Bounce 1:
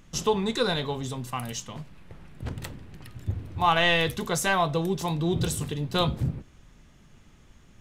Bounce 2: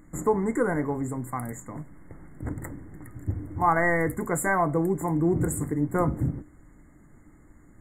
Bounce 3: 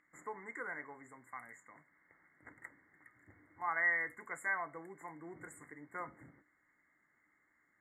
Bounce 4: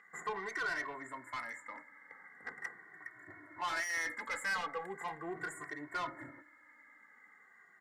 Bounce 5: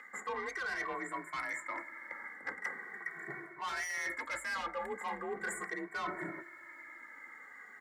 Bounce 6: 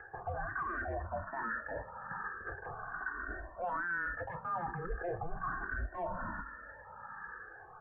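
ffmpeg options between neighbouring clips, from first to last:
-af "afftfilt=real='re*(1-between(b*sr/4096,2200,6800))':imag='im*(1-between(b*sr/4096,2200,6800))':win_size=4096:overlap=0.75,equalizer=f=300:w=5.5:g=13.5"
-af "bandpass=f=2.1k:t=q:w=2.3:csg=0,volume=-3.5dB"
-filter_complex "[0:a]asplit=2[a][b];[b]highpass=f=720:p=1,volume=20dB,asoftclip=type=tanh:threshold=-22.5dB[c];[a][c]amix=inputs=2:normalize=0,lowpass=f=2.9k:p=1,volume=-6dB,asoftclip=type=tanh:threshold=-33dB,asplit=2[d][e];[e]adelay=2.1,afreqshift=-0.4[f];[d][f]amix=inputs=2:normalize=1,volume=3.5dB"
-af "areverse,acompressor=threshold=-46dB:ratio=6,areverse,afreqshift=42,volume=10dB"
-filter_complex "[0:a]highpass=f=240:t=q:w=0.5412,highpass=f=240:t=q:w=1.307,lowpass=f=2.1k:t=q:w=0.5176,lowpass=f=2.1k:t=q:w=0.7071,lowpass=f=2.1k:t=q:w=1.932,afreqshift=-390,alimiter=level_in=11.5dB:limit=-24dB:level=0:latency=1:release=19,volume=-11.5dB,asplit=2[a][b];[b]afreqshift=1.2[c];[a][c]amix=inputs=2:normalize=1,volume=7.5dB"

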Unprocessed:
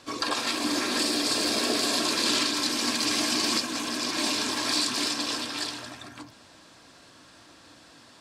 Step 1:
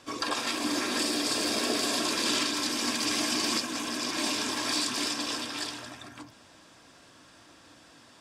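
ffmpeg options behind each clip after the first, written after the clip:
-af "bandreject=f=4.2k:w=9.1,volume=-2dB"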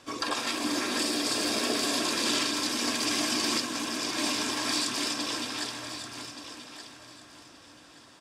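-af "aecho=1:1:1176|2352|3528:0.282|0.0648|0.0149"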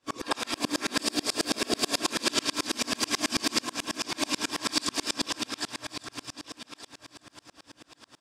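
-af "aeval=exprs='val(0)*pow(10,-34*if(lt(mod(-9.2*n/s,1),2*abs(-9.2)/1000),1-mod(-9.2*n/s,1)/(2*abs(-9.2)/1000),(mod(-9.2*n/s,1)-2*abs(-9.2)/1000)/(1-2*abs(-9.2)/1000))/20)':c=same,volume=8dB"

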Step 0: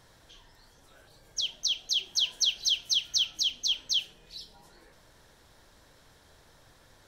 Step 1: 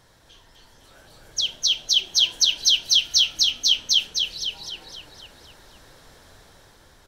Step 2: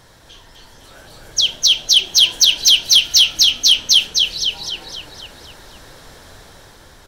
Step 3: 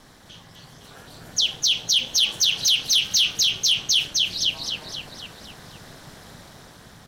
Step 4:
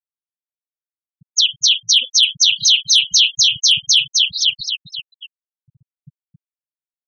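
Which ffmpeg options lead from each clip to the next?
-filter_complex "[0:a]dynaudnorm=f=190:g=9:m=5dB,asplit=2[a][b];[b]asplit=7[c][d][e][f][g][h][i];[c]adelay=255,afreqshift=-38,volume=-4dB[j];[d]adelay=510,afreqshift=-76,volume=-9.7dB[k];[e]adelay=765,afreqshift=-114,volume=-15.4dB[l];[f]adelay=1020,afreqshift=-152,volume=-21dB[m];[g]adelay=1275,afreqshift=-190,volume=-26.7dB[n];[h]adelay=1530,afreqshift=-228,volume=-32.4dB[o];[i]adelay=1785,afreqshift=-266,volume=-38.1dB[p];[j][k][l][m][n][o][p]amix=inputs=7:normalize=0[q];[a][q]amix=inputs=2:normalize=0,volume=2dB"
-af "aeval=exprs='0.596*sin(PI/2*1.78*val(0)/0.596)':c=same"
-af "aeval=exprs='val(0)*sin(2*PI*140*n/s)':c=same,alimiter=limit=-10.5dB:level=0:latency=1:release=43"
-af "afftfilt=real='re*gte(hypot(re,im),0.0708)':imag='im*gte(hypot(re,im),0.0708)':win_size=1024:overlap=0.75,volume=7dB"

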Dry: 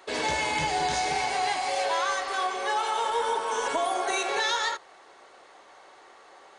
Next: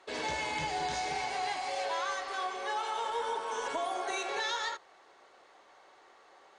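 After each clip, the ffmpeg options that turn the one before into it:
-af "lowpass=7.9k,volume=-7dB"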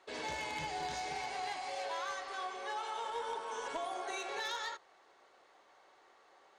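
-af "aeval=exprs='0.0708*(cos(1*acos(clip(val(0)/0.0708,-1,1)))-cos(1*PI/2))+0.0158*(cos(3*acos(clip(val(0)/0.0708,-1,1)))-cos(3*PI/2))+0.00631*(cos(5*acos(clip(val(0)/0.0708,-1,1)))-cos(5*PI/2))+0.000708*(cos(7*acos(clip(val(0)/0.0708,-1,1)))-cos(7*PI/2))':c=same,volume=-2dB"

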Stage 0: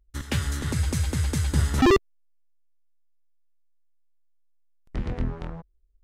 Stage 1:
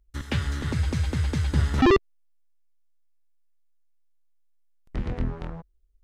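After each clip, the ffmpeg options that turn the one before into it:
-filter_complex "[0:a]acrossover=split=5100[a][b];[b]acompressor=threshold=-53dB:ratio=4:attack=1:release=60[c];[a][c]amix=inputs=2:normalize=0"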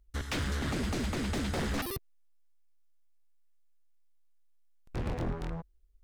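-af "aeval=exprs='0.0447*(abs(mod(val(0)/0.0447+3,4)-2)-1)':c=same"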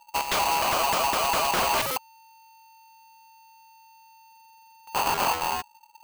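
-af "aeval=exprs='val(0)*sgn(sin(2*PI*900*n/s))':c=same,volume=8dB"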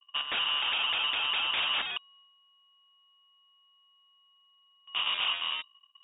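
-af "agate=range=-33dB:threshold=-51dB:ratio=3:detection=peak,lowpass=f=3.2k:t=q:w=0.5098,lowpass=f=3.2k:t=q:w=0.6013,lowpass=f=3.2k:t=q:w=0.9,lowpass=f=3.2k:t=q:w=2.563,afreqshift=-3800,volume=-5dB"

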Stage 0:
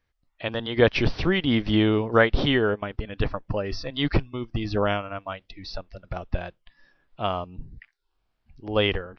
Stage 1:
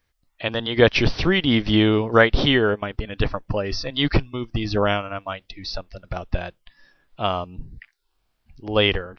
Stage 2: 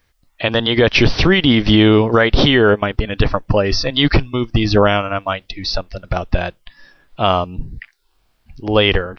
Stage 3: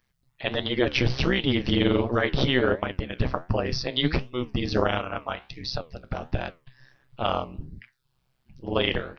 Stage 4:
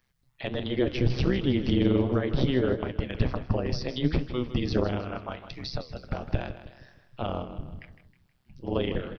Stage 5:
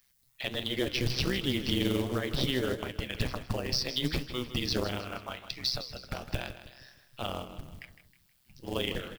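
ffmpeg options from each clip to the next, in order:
-af "highshelf=f=4.1k:g=8,volume=3dB"
-af "alimiter=level_in=10.5dB:limit=-1dB:release=50:level=0:latency=1,volume=-1dB"
-af "tremolo=f=130:d=0.947,flanger=delay=8.4:depth=9.1:regen=75:speed=1.4:shape=triangular,volume=-2.5dB"
-filter_complex "[0:a]acrossover=split=500[a][b];[b]acompressor=threshold=-35dB:ratio=6[c];[a][c]amix=inputs=2:normalize=0,aecho=1:1:158|316|474|632:0.251|0.108|0.0464|0.02"
-af "crystalizer=i=8:c=0,acrusher=bits=4:mode=log:mix=0:aa=0.000001,volume=-7dB"

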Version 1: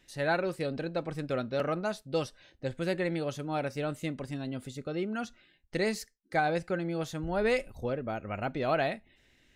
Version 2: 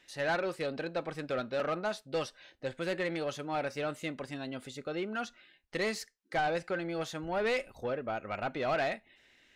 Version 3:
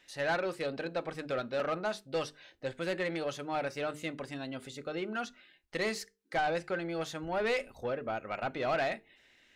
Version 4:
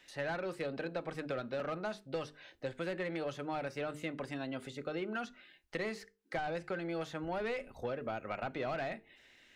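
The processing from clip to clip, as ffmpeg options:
-filter_complex "[0:a]asplit=2[a][b];[b]highpass=f=720:p=1,volume=17dB,asoftclip=type=tanh:threshold=-15dB[c];[a][c]amix=inputs=2:normalize=0,lowpass=f=4.2k:p=1,volume=-6dB,volume=-7dB"
-af "bandreject=f=50:t=h:w=6,bandreject=f=100:t=h:w=6,bandreject=f=150:t=h:w=6,bandreject=f=200:t=h:w=6,bandreject=f=250:t=h:w=6,bandreject=f=300:t=h:w=6,bandreject=f=350:t=h:w=6,bandreject=f=400:t=h:w=6,bandreject=f=450:t=h:w=6"
-filter_complex "[0:a]acrossover=split=260|2900[a][b][c];[a]acompressor=threshold=-46dB:ratio=4[d];[b]acompressor=threshold=-38dB:ratio=4[e];[c]acompressor=threshold=-59dB:ratio=4[f];[d][e][f]amix=inputs=3:normalize=0,volume=1.5dB"

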